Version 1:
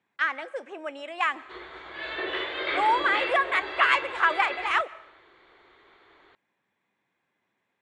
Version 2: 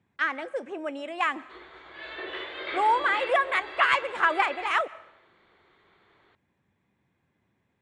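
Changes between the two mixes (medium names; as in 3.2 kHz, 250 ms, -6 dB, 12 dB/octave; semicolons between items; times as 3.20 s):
speech: remove frequency weighting A; background -5.5 dB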